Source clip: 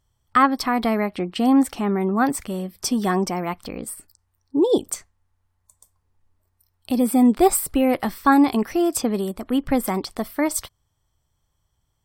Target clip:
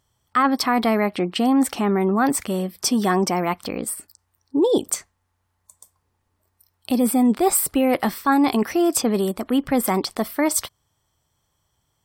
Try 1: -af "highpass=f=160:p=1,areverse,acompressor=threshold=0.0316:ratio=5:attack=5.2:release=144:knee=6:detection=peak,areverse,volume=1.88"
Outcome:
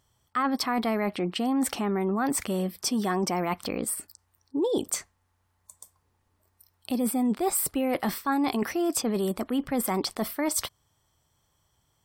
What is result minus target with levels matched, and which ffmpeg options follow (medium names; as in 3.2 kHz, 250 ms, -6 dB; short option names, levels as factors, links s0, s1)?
compression: peak gain reduction +8.5 dB
-af "highpass=f=160:p=1,areverse,acompressor=threshold=0.106:ratio=5:attack=5.2:release=144:knee=6:detection=peak,areverse,volume=1.88"